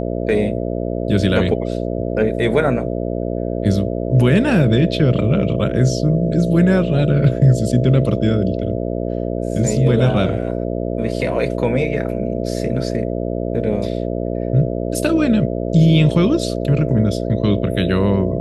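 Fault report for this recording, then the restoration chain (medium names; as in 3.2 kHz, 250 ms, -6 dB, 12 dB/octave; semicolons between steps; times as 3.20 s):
buzz 60 Hz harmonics 11 -22 dBFS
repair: de-hum 60 Hz, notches 11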